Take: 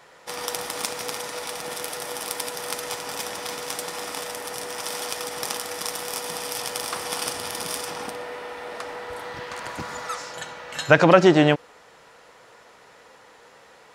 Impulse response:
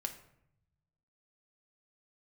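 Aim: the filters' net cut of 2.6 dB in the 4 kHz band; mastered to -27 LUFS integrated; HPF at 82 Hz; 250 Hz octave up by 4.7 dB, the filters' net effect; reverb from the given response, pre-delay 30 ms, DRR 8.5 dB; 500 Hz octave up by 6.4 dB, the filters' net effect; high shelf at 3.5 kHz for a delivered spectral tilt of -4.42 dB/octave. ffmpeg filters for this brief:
-filter_complex "[0:a]highpass=82,equalizer=f=250:t=o:g=3.5,equalizer=f=500:t=o:g=7,highshelf=f=3500:g=3.5,equalizer=f=4000:t=o:g=-6.5,asplit=2[s0][s1];[1:a]atrim=start_sample=2205,adelay=30[s2];[s1][s2]afir=irnorm=-1:irlink=0,volume=0.398[s3];[s0][s3]amix=inputs=2:normalize=0,volume=0.501"

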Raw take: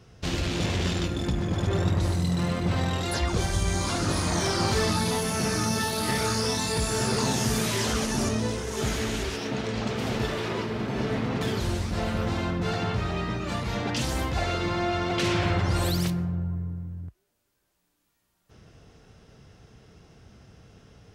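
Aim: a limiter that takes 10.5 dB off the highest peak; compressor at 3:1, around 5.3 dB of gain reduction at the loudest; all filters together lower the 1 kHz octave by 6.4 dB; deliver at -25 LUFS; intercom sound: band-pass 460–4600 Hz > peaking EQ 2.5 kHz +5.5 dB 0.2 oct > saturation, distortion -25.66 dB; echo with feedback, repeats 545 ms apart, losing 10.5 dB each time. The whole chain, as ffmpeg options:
-af "equalizer=f=1000:t=o:g=-8.5,acompressor=threshold=0.0398:ratio=3,alimiter=level_in=1.5:limit=0.0631:level=0:latency=1,volume=0.668,highpass=460,lowpass=4600,equalizer=f=2500:t=o:w=0.2:g=5.5,aecho=1:1:545|1090|1635:0.299|0.0896|0.0269,asoftclip=threshold=0.0316,volume=6.68"

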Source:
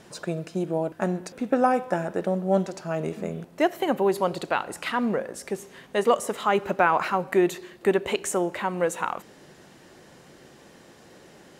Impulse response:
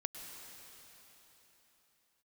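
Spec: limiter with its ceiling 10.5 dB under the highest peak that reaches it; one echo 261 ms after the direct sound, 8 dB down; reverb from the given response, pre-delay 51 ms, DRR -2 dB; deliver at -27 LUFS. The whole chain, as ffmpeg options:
-filter_complex "[0:a]alimiter=limit=0.141:level=0:latency=1,aecho=1:1:261:0.398,asplit=2[s0][s1];[1:a]atrim=start_sample=2205,adelay=51[s2];[s1][s2]afir=irnorm=-1:irlink=0,volume=1.33[s3];[s0][s3]amix=inputs=2:normalize=0,volume=0.794"

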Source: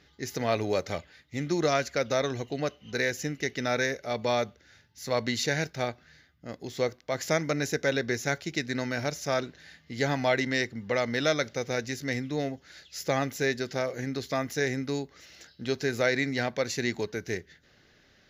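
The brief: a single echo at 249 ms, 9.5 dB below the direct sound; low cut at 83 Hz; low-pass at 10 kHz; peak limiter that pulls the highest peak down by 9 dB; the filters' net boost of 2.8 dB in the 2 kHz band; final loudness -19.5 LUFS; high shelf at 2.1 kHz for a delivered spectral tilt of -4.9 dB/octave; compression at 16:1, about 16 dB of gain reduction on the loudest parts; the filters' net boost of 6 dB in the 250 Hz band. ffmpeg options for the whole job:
-af "highpass=83,lowpass=10000,equalizer=f=250:t=o:g=7,equalizer=f=2000:t=o:g=5,highshelf=f=2100:g=-3.5,acompressor=threshold=0.0178:ratio=16,alimiter=level_in=1.88:limit=0.0631:level=0:latency=1,volume=0.531,aecho=1:1:249:0.335,volume=13.3"

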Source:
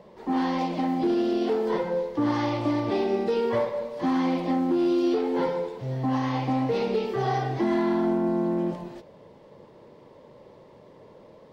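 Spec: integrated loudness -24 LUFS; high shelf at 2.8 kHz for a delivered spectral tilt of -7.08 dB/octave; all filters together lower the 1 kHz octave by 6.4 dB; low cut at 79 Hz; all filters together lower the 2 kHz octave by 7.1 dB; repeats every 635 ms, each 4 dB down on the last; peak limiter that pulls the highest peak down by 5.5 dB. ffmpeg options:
-af "highpass=79,equalizer=f=1000:t=o:g=-7.5,equalizer=f=2000:t=o:g=-5,highshelf=f=2800:g=-3.5,alimiter=limit=0.0794:level=0:latency=1,aecho=1:1:635|1270|1905|2540|3175|3810|4445|5080|5715:0.631|0.398|0.25|0.158|0.0994|0.0626|0.0394|0.0249|0.0157,volume=1.68"

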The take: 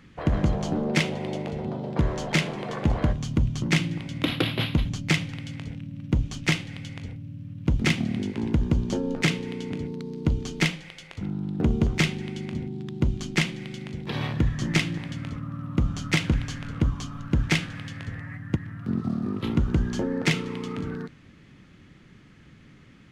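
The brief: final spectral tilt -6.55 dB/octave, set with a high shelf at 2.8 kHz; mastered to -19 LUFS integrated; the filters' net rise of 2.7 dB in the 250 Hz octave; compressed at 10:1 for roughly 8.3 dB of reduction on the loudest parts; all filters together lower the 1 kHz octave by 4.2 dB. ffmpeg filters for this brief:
-af "equalizer=f=250:t=o:g=4,equalizer=f=1000:t=o:g=-5,highshelf=f=2800:g=-7,acompressor=threshold=0.0562:ratio=10,volume=4.47"

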